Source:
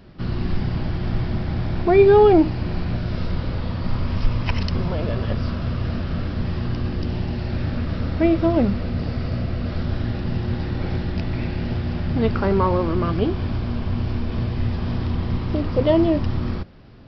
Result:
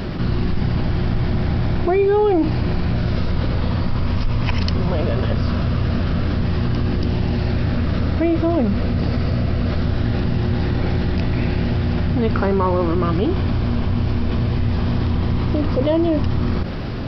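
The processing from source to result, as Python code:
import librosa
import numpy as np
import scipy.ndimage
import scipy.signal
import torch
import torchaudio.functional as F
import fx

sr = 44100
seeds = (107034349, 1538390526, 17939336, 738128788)

y = fx.env_flatten(x, sr, amount_pct=70)
y = y * 10.0 ** (-5.0 / 20.0)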